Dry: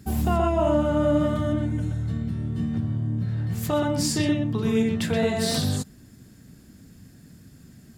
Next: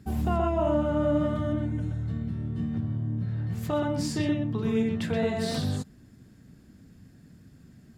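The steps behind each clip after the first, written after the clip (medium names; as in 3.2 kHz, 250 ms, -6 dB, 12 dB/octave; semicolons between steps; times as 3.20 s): treble shelf 4.9 kHz -10.5 dB; trim -3.5 dB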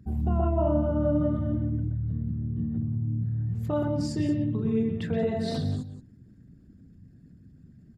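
resonances exaggerated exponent 1.5; delay 176 ms -12 dB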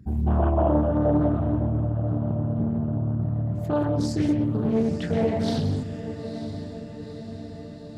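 echo that smears into a reverb 929 ms, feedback 64%, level -11 dB; loudspeaker Doppler distortion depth 0.47 ms; trim +3.5 dB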